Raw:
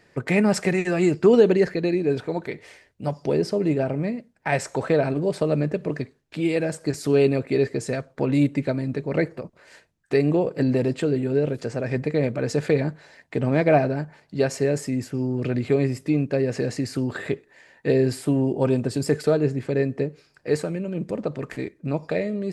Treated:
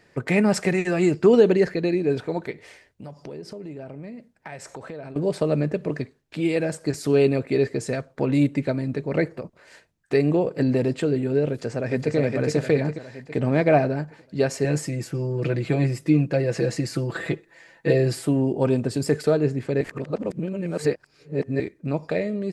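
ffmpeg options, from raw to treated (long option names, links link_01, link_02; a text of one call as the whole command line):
ffmpeg -i in.wav -filter_complex "[0:a]asettb=1/sr,asplit=3[link_01][link_02][link_03];[link_01]atrim=end=2.514[link_04];[link_02]atrim=start=2.51:end=5.16,asetpts=PTS-STARTPTS,afade=type=in:duration=0.004:curve=qsin,afade=type=out:start_time=2.646:duration=0.004:curve=qsin,acompressor=threshold=-36dB:ratio=4:attack=3.2:release=140:knee=1:detection=peak[link_05];[link_03]atrim=start=5.156[link_06];[link_04][link_05]acrossfade=duration=0.004:curve1=hsin:curve2=qsin[link_07];[link_07][link_06]acrossfade=duration=0.004:curve1=qsin:curve2=hsin,asplit=2[link_08][link_09];[link_09]afade=type=in:start_time=11.5:duration=0.01,afade=type=out:start_time=12.16:duration=0.01,aecho=0:1:410|820|1230|1640|2050|2460|2870:0.749894|0.374947|0.187474|0.0937368|0.0468684|0.0234342|0.0117171[link_10];[link_08][link_10]amix=inputs=2:normalize=0,asettb=1/sr,asplit=3[link_11][link_12][link_13];[link_11]atrim=end=14.644[link_14];[link_12]atrim=start=14.64:end=18.27,asetpts=PTS-STARTPTS,afade=type=in:duration=0.004:curve=qsin,afade=type=out:start_time=3.626:duration=0.004:curve=qsin,aecho=1:1:6:0.76,atrim=end_sample=160083[link_15];[link_13]atrim=start=18.266[link_16];[link_14][link_15]acrossfade=duration=0.004:curve1=hsin:curve2=qsin[link_17];[link_17][link_16]acrossfade=duration=0.004:curve1=qsin:curve2=hsin,asplit=3[link_18][link_19][link_20];[link_18]atrim=end=19.812[link_21];[link_19]atrim=start=19.808:end=21.602,asetpts=PTS-STARTPTS,areverse[link_22];[link_20]atrim=start=21.598[link_23];[link_21][link_22]acrossfade=duration=0.004:curve1=hsin:curve2=hsin[link_24];[link_24][link_23]acrossfade=duration=0.004:curve1=hsin:curve2=hsin" out.wav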